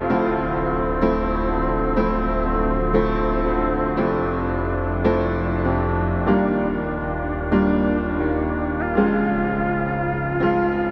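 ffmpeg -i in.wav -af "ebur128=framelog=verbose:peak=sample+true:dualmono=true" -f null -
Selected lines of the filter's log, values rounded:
Integrated loudness:
  I:         -18.3 LUFS
  Threshold: -28.3 LUFS
Loudness range:
  LRA:         0.5 LU
  Threshold: -38.3 LUFS
  LRA low:   -18.6 LUFS
  LRA high:  -18.1 LUFS
Sample peak:
  Peak:       -5.5 dBFS
True peak:
  Peak:       -5.5 dBFS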